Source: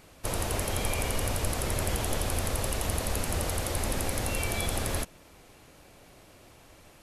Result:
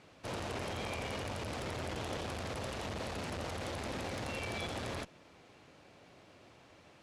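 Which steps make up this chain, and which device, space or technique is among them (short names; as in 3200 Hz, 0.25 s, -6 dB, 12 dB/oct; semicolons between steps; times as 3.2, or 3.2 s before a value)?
valve radio (BPF 100–4900 Hz; tube stage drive 25 dB, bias 0.35; core saturation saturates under 370 Hz); gain -2.5 dB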